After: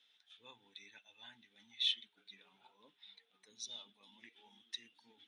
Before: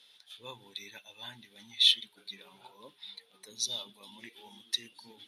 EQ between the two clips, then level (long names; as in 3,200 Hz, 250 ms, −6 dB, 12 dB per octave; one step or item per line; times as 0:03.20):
high-frequency loss of the air 72 metres
loudspeaker in its box 130–9,200 Hz, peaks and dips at 130 Hz −10 dB, 210 Hz −4 dB, 370 Hz −8 dB, 560 Hz −9 dB, 1,000 Hz −6 dB, 4,500 Hz −9 dB
−7.5 dB